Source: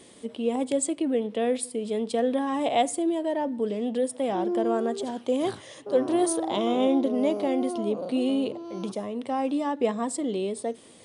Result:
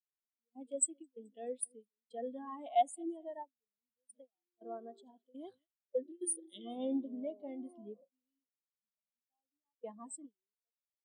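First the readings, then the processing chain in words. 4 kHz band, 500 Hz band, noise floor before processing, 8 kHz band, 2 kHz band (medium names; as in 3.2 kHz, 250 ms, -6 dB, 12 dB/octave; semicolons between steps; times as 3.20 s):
-20.5 dB, -17.5 dB, -51 dBFS, -5.0 dB, -23.0 dB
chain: amplifier tone stack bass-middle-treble 5-5-5; time-frequency box 5.81–6.66 s, 620–1700 Hz -15 dB; feedback delay 214 ms, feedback 53%, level -15 dB; gate with hold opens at -33 dBFS; bass shelf 240 Hz -4.5 dB; saturation -26 dBFS, distortion -21 dB; spectral contrast expander 2.5:1; trim +8 dB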